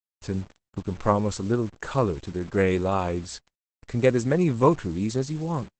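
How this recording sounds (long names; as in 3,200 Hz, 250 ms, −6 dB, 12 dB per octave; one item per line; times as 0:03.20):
a quantiser's noise floor 8 bits, dither none
Opus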